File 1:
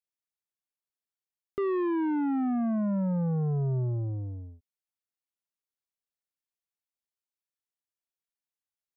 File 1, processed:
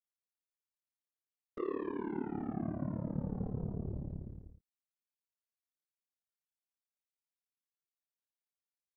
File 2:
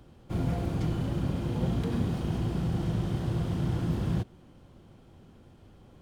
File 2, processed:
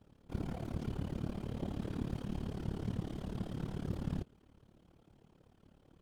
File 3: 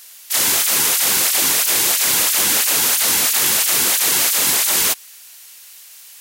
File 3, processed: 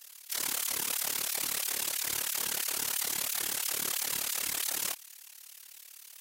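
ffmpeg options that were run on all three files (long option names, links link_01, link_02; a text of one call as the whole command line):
ffmpeg -i in.wav -af "alimiter=limit=-14dB:level=0:latency=1:release=13,afftfilt=real='hypot(re,im)*cos(2*PI*random(0))':imag='hypot(re,im)*sin(2*PI*random(1))':win_size=512:overlap=0.75,tremolo=f=36:d=0.857" out.wav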